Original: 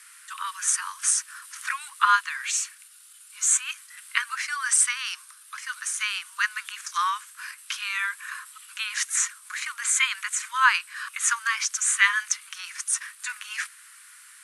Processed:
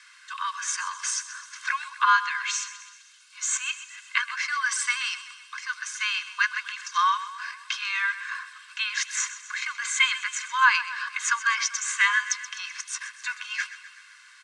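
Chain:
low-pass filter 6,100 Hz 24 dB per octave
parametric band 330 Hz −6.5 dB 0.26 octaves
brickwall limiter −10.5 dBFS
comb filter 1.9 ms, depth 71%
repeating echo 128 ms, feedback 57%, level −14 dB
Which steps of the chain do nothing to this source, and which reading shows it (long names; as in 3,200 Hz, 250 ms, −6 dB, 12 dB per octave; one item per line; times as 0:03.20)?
parametric band 330 Hz: nothing at its input below 810 Hz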